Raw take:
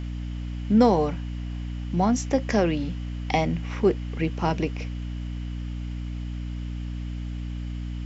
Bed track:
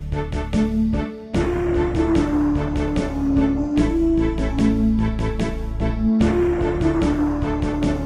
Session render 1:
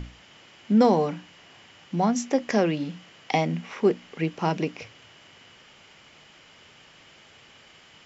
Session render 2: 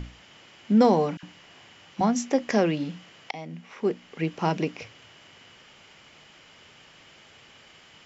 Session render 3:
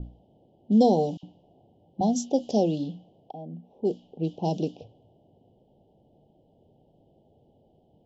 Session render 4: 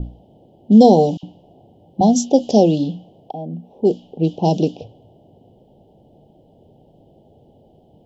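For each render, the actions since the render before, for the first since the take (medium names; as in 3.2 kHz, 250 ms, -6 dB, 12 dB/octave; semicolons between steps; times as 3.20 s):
hum notches 60/120/180/240/300 Hz
1.17–2.01 s: phase dispersion lows, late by 60 ms, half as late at 1.3 kHz; 3.31–4.37 s: fade in, from -19.5 dB
level-controlled noise filter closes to 610 Hz, open at -19.5 dBFS; elliptic band-stop 770–3300 Hz, stop band 40 dB
trim +10.5 dB; peak limiter -1 dBFS, peak gain reduction 1.5 dB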